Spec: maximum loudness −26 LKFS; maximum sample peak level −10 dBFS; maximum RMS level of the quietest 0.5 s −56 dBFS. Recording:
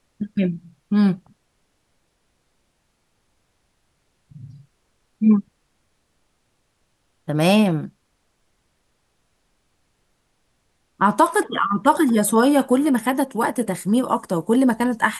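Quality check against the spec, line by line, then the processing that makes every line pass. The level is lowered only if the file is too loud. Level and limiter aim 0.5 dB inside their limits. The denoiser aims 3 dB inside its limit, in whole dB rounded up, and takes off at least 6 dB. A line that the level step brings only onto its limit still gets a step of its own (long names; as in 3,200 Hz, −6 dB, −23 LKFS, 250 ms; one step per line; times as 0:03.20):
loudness −19.5 LKFS: out of spec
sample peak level −3.0 dBFS: out of spec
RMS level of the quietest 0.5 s −68 dBFS: in spec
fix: level −7 dB
brickwall limiter −10.5 dBFS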